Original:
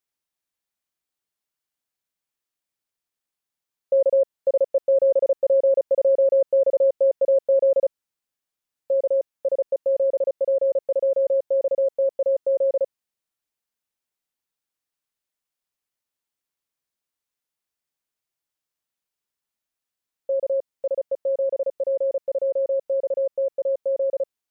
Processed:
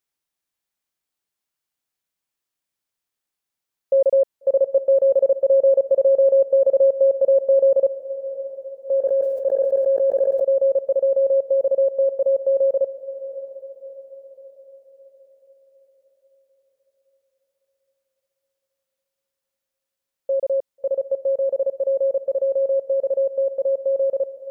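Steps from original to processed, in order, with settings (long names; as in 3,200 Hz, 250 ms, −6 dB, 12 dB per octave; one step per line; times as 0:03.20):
feedback delay with all-pass diffusion 665 ms, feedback 47%, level −15 dB
0:09.00–0:10.40: level that may fall only so fast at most 38 dB per second
level +2 dB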